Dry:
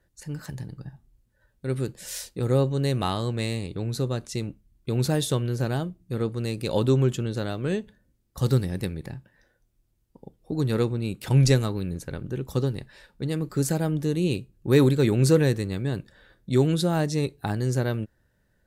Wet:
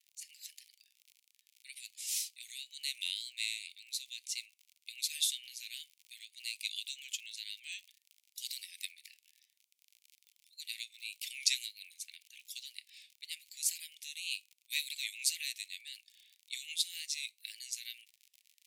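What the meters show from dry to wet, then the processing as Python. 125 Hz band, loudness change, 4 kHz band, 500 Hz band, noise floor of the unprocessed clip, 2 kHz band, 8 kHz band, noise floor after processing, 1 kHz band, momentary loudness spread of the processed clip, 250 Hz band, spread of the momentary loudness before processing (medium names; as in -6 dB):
under -40 dB, -12.5 dB, 0.0 dB, under -40 dB, -69 dBFS, -6.0 dB, 0.0 dB, -82 dBFS, under -40 dB, 18 LU, under -40 dB, 15 LU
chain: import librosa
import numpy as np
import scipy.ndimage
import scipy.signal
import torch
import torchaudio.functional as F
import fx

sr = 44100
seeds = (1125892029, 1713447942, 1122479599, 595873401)

y = fx.vibrato(x, sr, rate_hz=1.9, depth_cents=51.0)
y = fx.dmg_crackle(y, sr, seeds[0], per_s=61.0, level_db=-42.0)
y = scipy.signal.sosfilt(scipy.signal.butter(12, 2200.0, 'highpass', fs=sr, output='sos'), y)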